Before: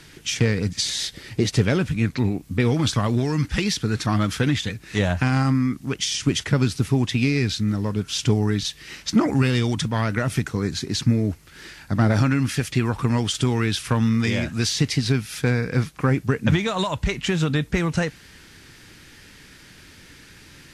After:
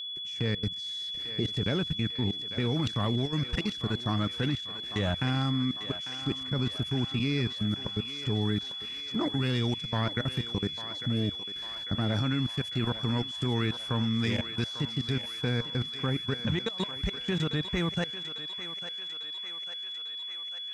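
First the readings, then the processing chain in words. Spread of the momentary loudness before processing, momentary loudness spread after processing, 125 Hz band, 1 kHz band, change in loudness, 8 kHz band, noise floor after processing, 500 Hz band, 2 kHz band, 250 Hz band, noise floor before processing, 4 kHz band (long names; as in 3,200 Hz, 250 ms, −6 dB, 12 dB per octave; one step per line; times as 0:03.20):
5 LU, 7 LU, −9.0 dB, −9.0 dB, −8.0 dB, −20.5 dB, −38 dBFS, −8.5 dB, −9.5 dB, −9.0 dB, −48 dBFS, −1.0 dB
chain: high-shelf EQ 3,400 Hz −5.5 dB
output level in coarse steps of 23 dB
steady tone 3,400 Hz −30 dBFS
on a send: feedback echo with a high-pass in the loop 848 ms, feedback 73%, high-pass 640 Hz, level −9 dB
on the sum: level −5 dB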